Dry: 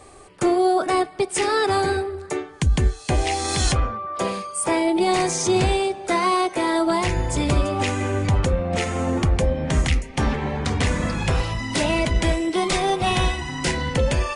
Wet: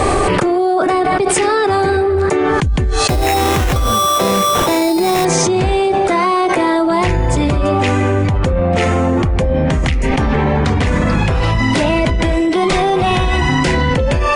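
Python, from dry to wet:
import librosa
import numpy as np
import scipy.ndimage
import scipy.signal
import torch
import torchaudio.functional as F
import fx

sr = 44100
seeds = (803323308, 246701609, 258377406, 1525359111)

y = fx.high_shelf(x, sr, hz=4400.0, db=-12.0)
y = fx.sample_hold(y, sr, seeds[0], rate_hz=4600.0, jitter_pct=0, at=(3.08, 5.25))
y = fx.env_flatten(y, sr, amount_pct=100)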